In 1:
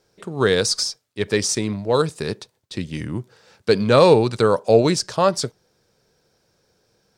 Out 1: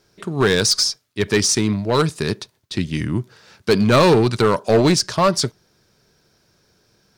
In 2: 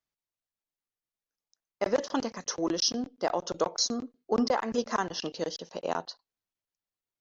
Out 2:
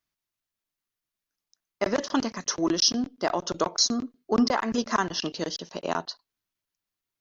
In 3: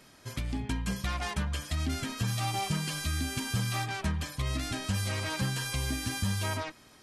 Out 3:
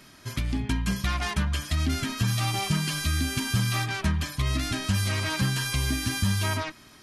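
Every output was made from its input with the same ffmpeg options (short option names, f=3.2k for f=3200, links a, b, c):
-filter_complex "[0:a]equalizer=f=500:t=o:w=0.33:g=-9,equalizer=f=800:t=o:w=0.33:g=-5,equalizer=f=8k:t=o:w=0.33:g=-4,asplit=2[a][b];[b]aeval=exprs='0.15*(abs(mod(val(0)/0.15+3,4)-2)-1)':c=same,volume=-4dB[c];[a][c]amix=inputs=2:normalize=0,volume=1.5dB"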